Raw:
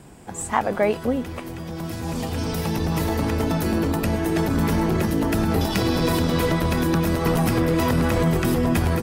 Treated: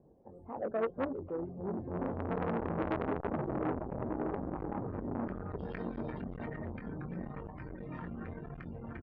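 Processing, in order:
source passing by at 0:02.76, 24 m/s, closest 7.8 metres
reverb reduction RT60 2 s
gate on every frequency bin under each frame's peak −25 dB strong
dynamic equaliser 280 Hz, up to +3 dB, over −44 dBFS, Q 0.8
brickwall limiter −25 dBFS, peak gain reduction 10.5 dB
low-pass filter sweep 560 Hz → 1,800 Hz, 0:03.76–0:05.83
delay with pitch and tempo change per echo 316 ms, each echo −5 semitones, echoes 3, each echo −6 dB
double-tracking delay 22 ms −7 dB
saturating transformer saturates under 1,100 Hz

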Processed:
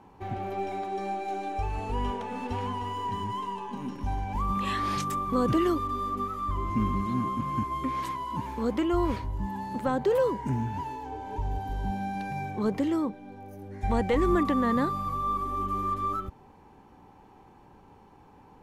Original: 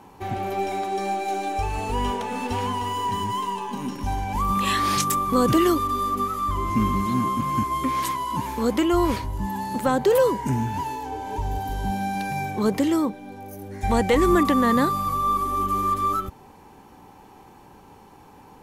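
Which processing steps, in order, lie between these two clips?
low-pass filter 2,600 Hz 6 dB per octave
low-shelf EQ 110 Hz +4 dB
level −6 dB

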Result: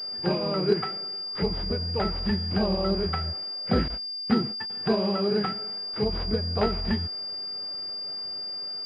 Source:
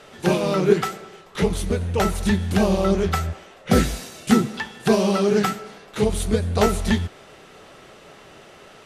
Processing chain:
0:03.88–0:04.70: noise gate −27 dBFS, range −19 dB
switching amplifier with a slow clock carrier 4,800 Hz
level −6.5 dB

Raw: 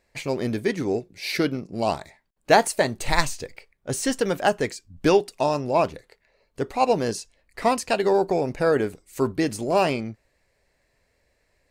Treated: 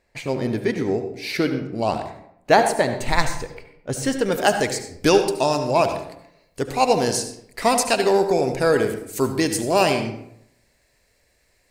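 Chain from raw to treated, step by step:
high-shelf EQ 3,500 Hz −4 dB, from 0:04.32 +10 dB
convolution reverb RT60 0.75 s, pre-delay 66 ms, DRR 7.5 dB
level +1.5 dB

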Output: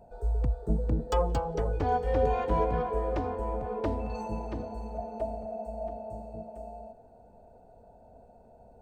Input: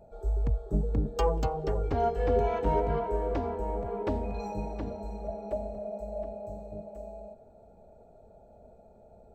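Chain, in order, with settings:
speed change +6%

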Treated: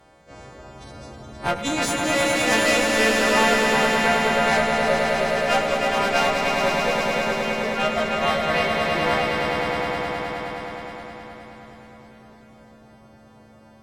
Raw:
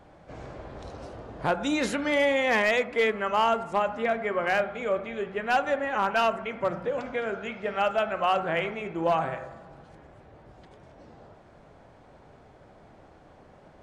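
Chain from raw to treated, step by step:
every partial snapped to a pitch grid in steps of 2 semitones
harmonic generator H 4 −13 dB, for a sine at −10 dBFS
echo that builds up and dies away 105 ms, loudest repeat 5, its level −4 dB

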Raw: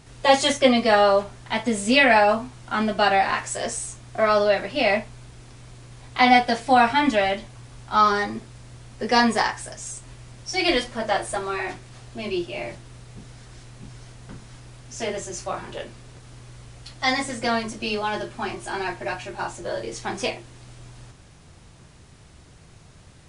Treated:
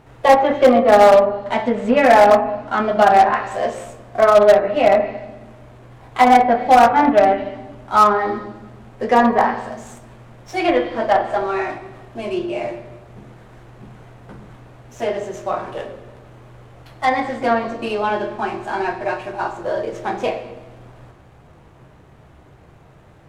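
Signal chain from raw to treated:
running median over 9 samples
on a send at −6.5 dB: convolution reverb RT60 1.1 s, pre-delay 6 ms
on the sum: treble cut that deepens with the level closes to 1,700 Hz, closed at −15.5 dBFS
parametric band 690 Hz +8 dB 2.5 octaves
harmonic generator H 3 −28 dB, 4 −26 dB, 6 −30 dB, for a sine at −4.5 dBFS

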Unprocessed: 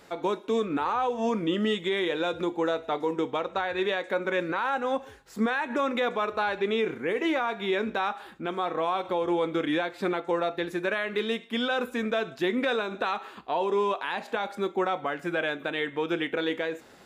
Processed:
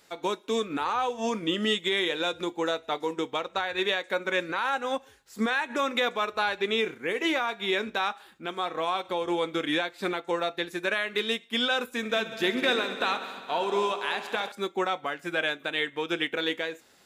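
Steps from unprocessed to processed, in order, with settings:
high-shelf EQ 2,200 Hz +12 dB
0:11.96–0:14.52: echo machine with several playback heads 66 ms, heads all three, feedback 70%, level −15 dB
expander for the loud parts 1.5 to 1, over −41 dBFS
level −1 dB

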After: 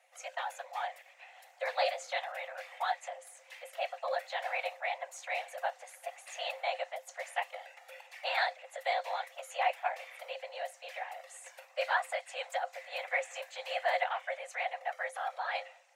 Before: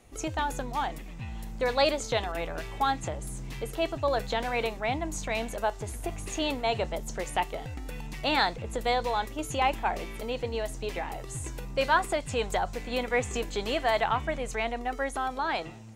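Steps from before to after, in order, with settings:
random phases in short frames
Chebyshev high-pass with heavy ripple 510 Hz, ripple 9 dB
level −1.5 dB

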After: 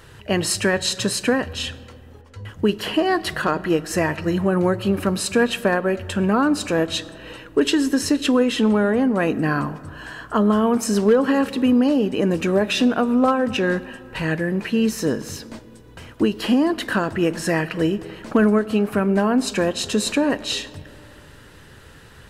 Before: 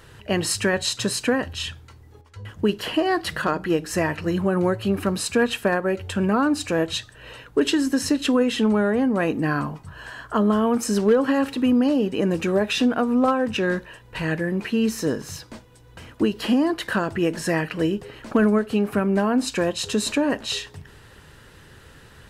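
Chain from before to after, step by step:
comb and all-pass reverb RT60 2.9 s, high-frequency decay 0.35×, pre-delay 65 ms, DRR 19 dB
level +2 dB

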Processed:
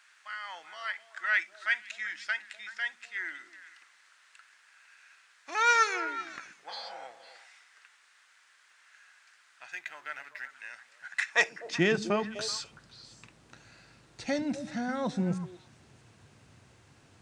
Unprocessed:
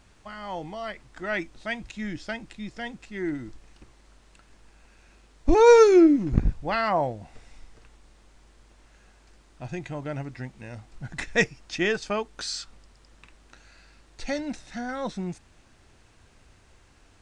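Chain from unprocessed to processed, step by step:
one-sided soft clipper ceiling −9 dBFS
0:06.72–0:07.02: healed spectral selection 450–3,000 Hz
0:09.72–0:10.50: slack as between gear wheels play −52 dBFS
high-pass filter sweep 1,600 Hz → 120 Hz, 0:11.24–0:11.86
echo through a band-pass that steps 126 ms, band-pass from 180 Hz, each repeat 1.4 octaves, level −6 dB
on a send at −23 dB: convolution reverb, pre-delay 41 ms
on the sum: level −1.5 dB

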